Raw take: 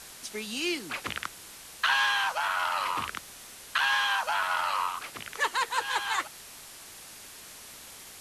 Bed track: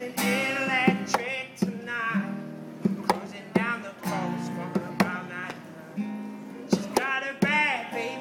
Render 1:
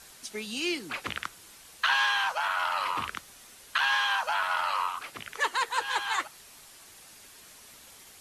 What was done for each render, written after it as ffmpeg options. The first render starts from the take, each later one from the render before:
ffmpeg -i in.wav -af "afftdn=noise_reduction=6:noise_floor=-47" out.wav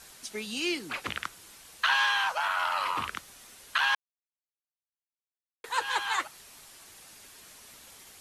ffmpeg -i in.wav -filter_complex "[0:a]asplit=3[link_01][link_02][link_03];[link_01]atrim=end=3.95,asetpts=PTS-STARTPTS,afade=type=out:start_time=3.946:duration=0.004:curve=hsin[link_04];[link_02]atrim=start=3.95:end=5.64,asetpts=PTS-STARTPTS,volume=0[link_05];[link_03]atrim=start=5.64,asetpts=PTS-STARTPTS,afade=type=in:duration=0.004:curve=hsin[link_06];[link_04][link_05][link_06]concat=n=3:v=0:a=1" out.wav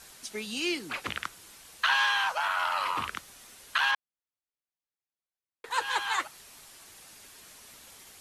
ffmpeg -i in.wav -filter_complex "[0:a]asettb=1/sr,asplit=3[link_01][link_02][link_03];[link_01]atrim=end=3.914[link_04];[link_02]atrim=start=3.91:end=5.71,asetpts=PTS-STARTPTS,afade=type=in:duration=0.004:curve=qsin,afade=type=out:start_time=1.796:duration=0.004:curve=qsin,highshelf=frequency=5000:gain=-9[link_05];[link_03]atrim=start=5.706[link_06];[link_04][link_05]acrossfade=duration=0.004:curve1=hsin:curve2=qsin[link_07];[link_07][link_06]acrossfade=duration=0.004:curve1=qsin:curve2=hsin" out.wav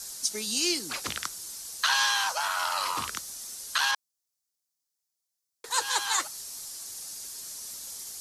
ffmpeg -i in.wav -af "highshelf=frequency=3800:width_type=q:width=1.5:gain=11.5" out.wav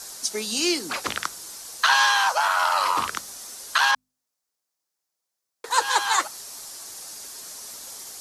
ffmpeg -i in.wav -af "equalizer=frequency=750:width=0.31:gain=9.5,bandreject=frequency=51.02:width_type=h:width=4,bandreject=frequency=102.04:width_type=h:width=4,bandreject=frequency=153.06:width_type=h:width=4,bandreject=frequency=204.08:width_type=h:width=4,bandreject=frequency=255.1:width_type=h:width=4" out.wav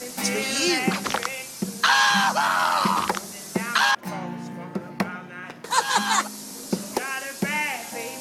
ffmpeg -i in.wav -i bed.wav -filter_complex "[1:a]volume=-2.5dB[link_01];[0:a][link_01]amix=inputs=2:normalize=0" out.wav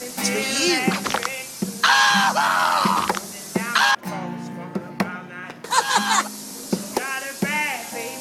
ffmpeg -i in.wav -af "volume=2.5dB" out.wav

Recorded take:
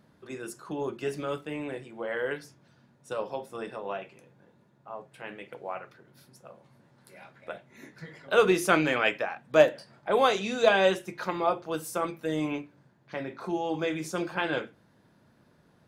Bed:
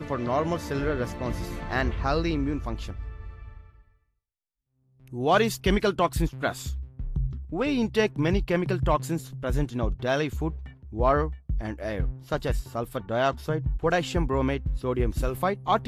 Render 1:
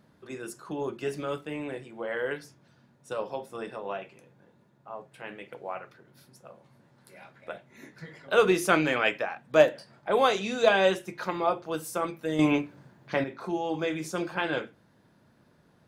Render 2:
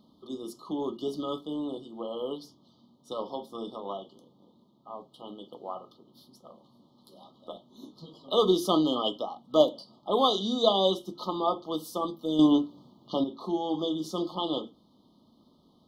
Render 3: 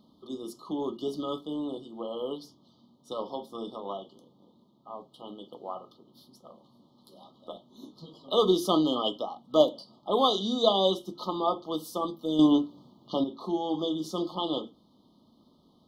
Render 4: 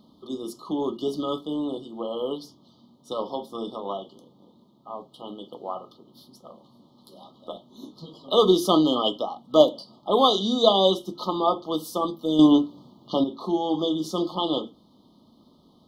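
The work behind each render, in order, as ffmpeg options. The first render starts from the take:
ffmpeg -i in.wav -filter_complex "[0:a]asplit=3[link_01][link_02][link_03];[link_01]atrim=end=12.392[link_04];[link_02]atrim=start=12.388:end=13.242,asetpts=PTS-STARTPTS,volume=8dB[link_05];[link_03]atrim=start=13.238[link_06];[link_04][link_05]acrossfade=duration=0.004:curve1=hsin:curve2=hsin[link_07];[link_07][link_06]acrossfade=duration=0.004:curve1=hsin:curve2=hsin" out.wav
ffmpeg -i in.wav -af "equalizer=frequency=125:width_type=o:width=1:gain=-10,equalizer=frequency=250:width_type=o:width=1:gain=8,equalizer=frequency=500:width_type=o:width=1:gain=-4,equalizer=frequency=4000:width_type=o:width=1:gain=9,equalizer=frequency=8000:width_type=o:width=1:gain=-11,afftfilt=real='re*(1-between(b*sr/4096,1300,2900))':imag='im*(1-between(b*sr/4096,1300,2900))':win_size=4096:overlap=0.75" out.wav
ffmpeg -i in.wav -af anull out.wav
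ffmpeg -i in.wav -af "volume=5dB" out.wav

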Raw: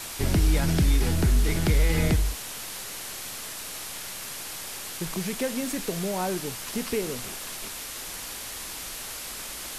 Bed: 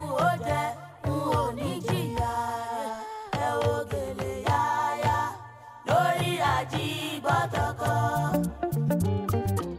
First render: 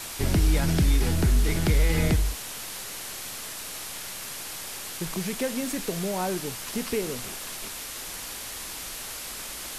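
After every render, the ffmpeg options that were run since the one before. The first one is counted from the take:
ffmpeg -i in.wav -af anull out.wav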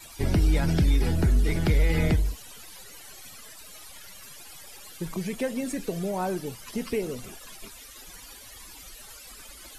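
ffmpeg -i in.wav -af "afftdn=noise_reduction=16:noise_floor=-37" out.wav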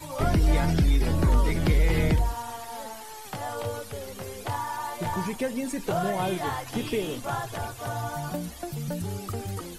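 ffmpeg -i in.wav -i bed.wav -filter_complex "[1:a]volume=-6.5dB[link_01];[0:a][link_01]amix=inputs=2:normalize=0" out.wav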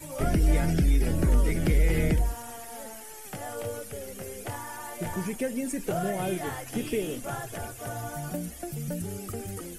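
ffmpeg -i in.wav -af "equalizer=frequency=100:width_type=o:width=0.67:gain=-6,equalizer=frequency=1000:width_type=o:width=0.67:gain=-11,equalizer=frequency=4000:width_type=o:width=0.67:gain=-9,equalizer=frequency=10000:width_type=o:width=0.67:gain=4" out.wav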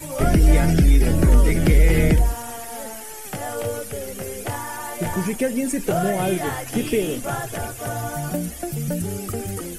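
ffmpeg -i in.wav -af "volume=8dB" out.wav

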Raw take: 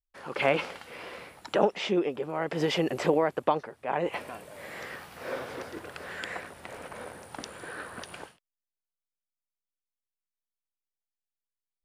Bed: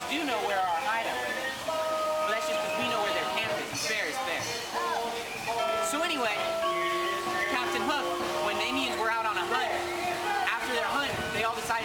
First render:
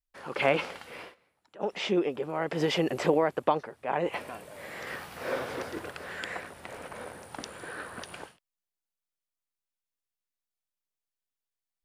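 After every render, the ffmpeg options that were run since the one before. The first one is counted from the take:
ffmpeg -i in.wav -filter_complex "[0:a]asplit=5[link_01][link_02][link_03][link_04][link_05];[link_01]atrim=end=1.15,asetpts=PTS-STARTPTS,afade=type=out:start_time=1:duration=0.15:silence=0.0630957[link_06];[link_02]atrim=start=1.15:end=1.59,asetpts=PTS-STARTPTS,volume=-24dB[link_07];[link_03]atrim=start=1.59:end=4.872,asetpts=PTS-STARTPTS,afade=type=in:duration=0.15:silence=0.0630957[link_08];[link_04]atrim=start=4.868:end=5.912,asetpts=PTS-STARTPTS,volume=3dB[link_09];[link_05]atrim=start=5.908[link_10];[link_06][link_07][link_08]concat=n=3:v=0:a=1[link_11];[link_11][link_09]acrossfade=duration=0.004:curve1=hsin:curve2=hsin[link_12];[link_12][link_10]acrossfade=duration=0.004:curve1=hsin:curve2=hsin" out.wav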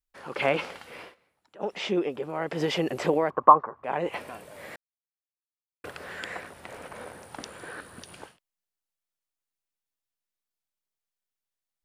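ffmpeg -i in.wav -filter_complex "[0:a]asettb=1/sr,asplit=3[link_01][link_02][link_03];[link_01]atrim=end=3.304[link_04];[link_02]atrim=start=3.3:end=3.84,asetpts=PTS-STARTPTS,afade=type=in:duration=0.004:curve=qsin,afade=type=out:start_time=0.536:duration=0.004:curve=qsin,lowpass=frequency=1100:width_type=q:width=11[link_05];[link_03]atrim=start=3.836[link_06];[link_04][link_05]acrossfade=duration=0.004:curve1=hsin:curve2=qsin[link_07];[link_07][link_06]acrossfade=duration=0.004:curve1=qsin:curve2=hsin,asettb=1/sr,asplit=3[link_08][link_09][link_10];[link_08]atrim=end=7.804[link_11];[link_09]atrim=start=7.8:end=8.22,asetpts=PTS-STARTPTS,afade=type=in:duration=0.004:curve=qsin,afade=type=out:start_time=0.416:duration=0.004:curve=qsin,acrossover=split=370|3000[link_12][link_13][link_14];[link_13]acompressor=threshold=-49dB:ratio=6:attack=3.2:release=140:knee=2.83:detection=peak[link_15];[link_12][link_15][link_14]amix=inputs=3:normalize=0[link_16];[link_10]atrim=start=8.216[link_17];[link_11][link_16]acrossfade=duration=0.004:curve1=hsin:curve2=qsin[link_18];[link_18][link_17]acrossfade=duration=0.004:curve1=qsin:curve2=hsin,asplit=3[link_19][link_20][link_21];[link_19]atrim=end=4.76,asetpts=PTS-STARTPTS,afade=type=out:start_time=4.756:duration=0.004:curve=hsin[link_22];[link_20]atrim=start=4.76:end=5.84,asetpts=PTS-STARTPTS,volume=0[link_23];[link_21]atrim=start=5.84,asetpts=PTS-STARTPTS,afade=type=in:duration=0.004:curve=hsin[link_24];[link_22][link_23][link_24]concat=n=3:v=0:a=1" out.wav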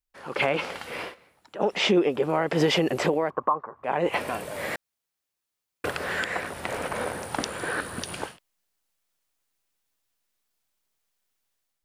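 ffmpeg -i in.wav -af "dynaudnorm=framelen=160:gausssize=5:maxgain=11.5dB,alimiter=limit=-12dB:level=0:latency=1:release=336" out.wav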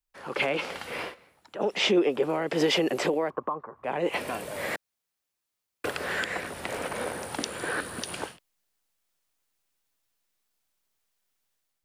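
ffmpeg -i in.wav -filter_complex "[0:a]acrossover=split=210|500|2100[link_01][link_02][link_03][link_04];[link_01]acompressor=threshold=-47dB:ratio=6[link_05];[link_03]alimiter=limit=-24dB:level=0:latency=1:release=443[link_06];[link_05][link_02][link_06][link_04]amix=inputs=4:normalize=0" out.wav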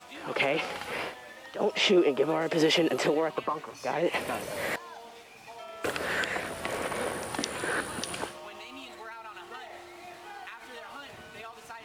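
ffmpeg -i in.wav -i bed.wav -filter_complex "[1:a]volume=-15dB[link_01];[0:a][link_01]amix=inputs=2:normalize=0" out.wav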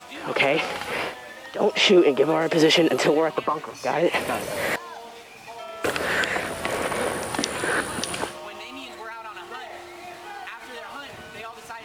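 ffmpeg -i in.wav -af "volume=6.5dB" out.wav

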